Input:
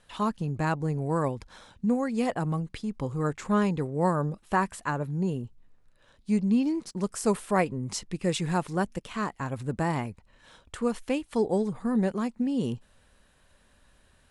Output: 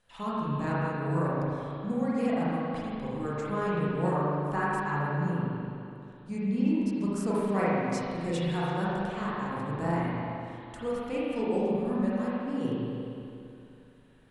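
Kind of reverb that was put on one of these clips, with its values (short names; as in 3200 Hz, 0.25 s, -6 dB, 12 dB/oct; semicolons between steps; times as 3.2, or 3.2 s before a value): spring tank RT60 2.7 s, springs 35/41 ms, chirp 50 ms, DRR -8.5 dB; gain -10 dB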